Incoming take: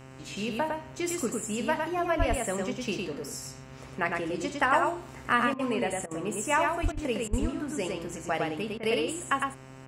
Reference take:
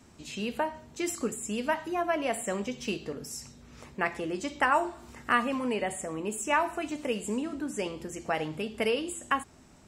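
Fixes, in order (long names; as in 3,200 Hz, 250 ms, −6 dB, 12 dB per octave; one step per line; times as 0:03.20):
hum removal 132 Hz, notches 23
high-pass at the plosives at 0:02.18/0:06.82/0:07.30
repair the gap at 0:05.54/0:06.06/0:06.92/0:07.28/0:08.78, 50 ms
echo removal 107 ms −3.5 dB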